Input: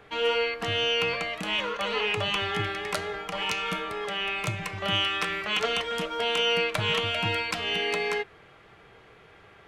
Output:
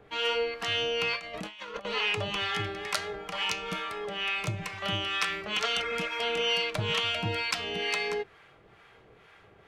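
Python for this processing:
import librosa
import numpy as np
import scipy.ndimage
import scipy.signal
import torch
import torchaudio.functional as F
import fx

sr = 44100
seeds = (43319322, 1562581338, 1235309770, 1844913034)

y = fx.dynamic_eq(x, sr, hz=5200.0, q=1.3, threshold_db=-44.0, ratio=4.0, max_db=5)
y = fx.over_compress(y, sr, threshold_db=-35.0, ratio=-0.5, at=(1.16, 1.85))
y = fx.harmonic_tremolo(y, sr, hz=2.2, depth_pct=70, crossover_hz=760.0)
y = fx.spec_repair(y, sr, seeds[0], start_s=5.74, length_s=0.91, low_hz=970.0, high_hz=2600.0, source='both')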